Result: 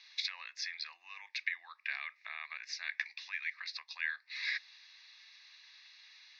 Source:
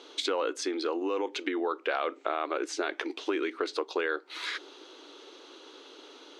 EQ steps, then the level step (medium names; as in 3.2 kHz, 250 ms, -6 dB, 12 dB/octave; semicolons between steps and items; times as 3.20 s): Chebyshev band-pass 1.7–5.5 kHz, order 3; treble shelf 2.1 kHz -10.5 dB; static phaser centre 2.1 kHz, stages 8; +9.0 dB